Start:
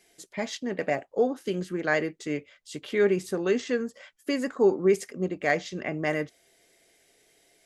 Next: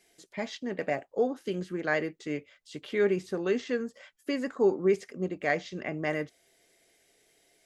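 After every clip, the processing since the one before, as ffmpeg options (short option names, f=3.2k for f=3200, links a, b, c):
-filter_complex "[0:a]acrossover=split=5600[a][b];[b]acompressor=threshold=-56dB:ratio=4:attack=1:release=60[c];[a][c]amix=inputs=2:normalize=0,volume=-3dB"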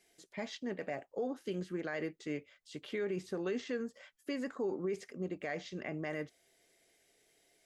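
-af "alimiter=limit=-23.5dB:level=0:latency=1:release=59,volume=-4.5dB"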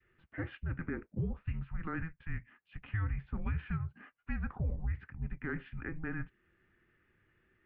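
-af "adynamicequalizer=threshold=0.00141:dfrequency=1100:dqfactor=1.4:tfrequency=1100:tqfactor=1.4:attack=5:release=100:ratio=0.375:range=2.5:mode=cutabove:tftype=bell,highpass=f=190:t=q:w=0.5412,highpass=f=190:t=q:w=1.307,lowpass=f=2.7k:t=q:w=0.5176,lowpass=f=2.7k:t=q:w=0.7071,lowpass=f=2.7k:t=q:w=1.932,afreqshift=-320,volume=2.5dB"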